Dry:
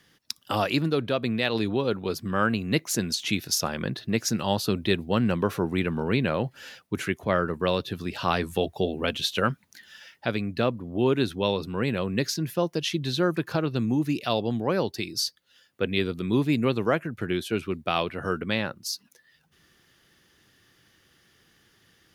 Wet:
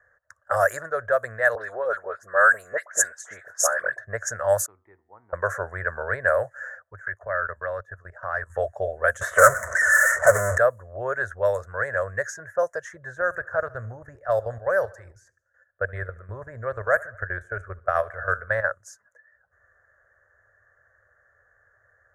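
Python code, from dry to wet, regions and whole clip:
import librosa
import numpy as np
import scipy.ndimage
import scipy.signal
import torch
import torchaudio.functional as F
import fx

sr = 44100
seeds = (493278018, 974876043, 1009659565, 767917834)

y = fx.chain(x, sr, fx.highpass(hz=280.0, slope=12),
    fx.dispersion(late='highs', ms=66.0, hz=1900.0), at=(1.55, 3.98))
y = fx.chain(y, sr, fx.vowel_filter(vowel='u'),
    fx.comb_fb(f0_hz=94.0, decay_s=0.72, harmonics='all', damping=0.0, mix_pct=40), at=(4.66, 5.33))
y = fx.chain(y, sr, fx.dynamic_eq(hz=490.0, q=1.2, threshold_db=-35.0, ratio=4.0, max_db=-4),
    fx.level_steps(step_db=16), at=(6.83, 8.5))
y = fx.chain(y, sr, fx.lowpass(hz=1600.0, slope=12),
    fx.power_curve(exponent=0.35),
    fx.notch_comb(f0_hz=810.0), at=(9.21, 10.58))
y = fx.chain(y, sr, fx.median_filter(points=5),
    fx.peak_eq(hz=380.0, db=-3.5, octaves=0.25), at=(11.54, 12.24))
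y = fx.chain(y, sr, fx.low_shelf(hz=160.0, db=10.0),
    fx.level_steps(step_db=12),
    fx.echo_feedback(ms=73, feedback_pct=58, wet_db=-22.5), at=(13.21, 18.64))
y = fx.curve_eq(y, sr, hz=(100.0, 150.0, 290.0, 590.0, 860.0, 1700.0, 2600.0, 4400.0, 6800.0, 13000.0), db=(0, -20, -29, 12, -4, 14, -30, -28, 9, 4))
y = fx.env_lowpass(y, sr, base_hz=1100.0, full_db=-16.0)
y = fx.high_shelf(y, sr, hz=2600.0, db=9.5)
y = F.gain(torch.from_numpy(y), -1.0).numpy()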